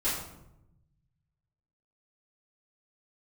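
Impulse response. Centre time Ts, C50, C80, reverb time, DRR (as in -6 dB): 52 ms, 2.5 dB, 5.5 dB, 0.85 s, -12.5 dB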